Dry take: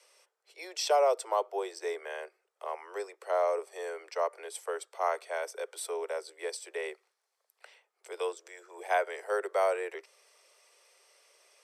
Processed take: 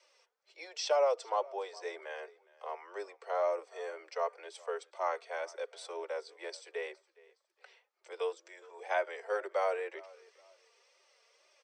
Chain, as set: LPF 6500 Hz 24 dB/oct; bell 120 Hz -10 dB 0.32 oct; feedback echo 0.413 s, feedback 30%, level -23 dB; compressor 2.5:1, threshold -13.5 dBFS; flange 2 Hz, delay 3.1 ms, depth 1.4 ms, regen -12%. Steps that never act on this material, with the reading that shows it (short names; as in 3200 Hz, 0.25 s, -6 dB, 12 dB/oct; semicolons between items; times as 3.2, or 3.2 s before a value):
bell 120 Hz: input band starts at 320 Hz; compressor, threshold -13.5 dBFS: input peak -16.0 dBFS